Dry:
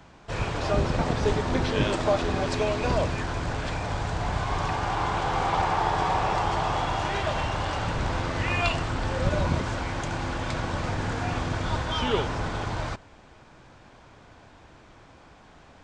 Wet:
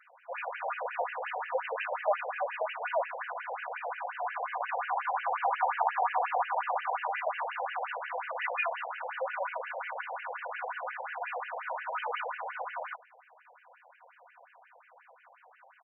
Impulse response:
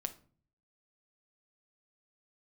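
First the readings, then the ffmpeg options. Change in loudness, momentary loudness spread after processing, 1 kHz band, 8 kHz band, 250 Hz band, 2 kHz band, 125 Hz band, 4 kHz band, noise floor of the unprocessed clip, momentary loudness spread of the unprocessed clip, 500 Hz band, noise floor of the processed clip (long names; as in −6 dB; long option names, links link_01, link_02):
−6.5 dB, 8 LU, −3.5 dB, below −40 dB, below −40 dB, −3.5 dB, below −40 dB, −16.0 dB, −52 dBFS, 6 LU, −7.0 dB, −61 dBFS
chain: -af "aecho=1:1:4.1:0.36,afftfilt=real='re*between(b*sr/1024,630*pow(2200/630,0.5+0.5*sin(2*PI*5.6*pts/sr))/1.41,630*pow(2200/630,0.5+0.5*sin(2*PI*5.6*pts/sr))*1.41)':imag='im*between(b*sr/1024,630*pow(2200/630,0.5+0.5*sin(2*PI*5.6*pts/sr))/1.41,630*pow(2200/630,0.5+0.5*sin(2*PI*5.6*pts/sr))*1.41)':win_size=1024:overlap=0.75"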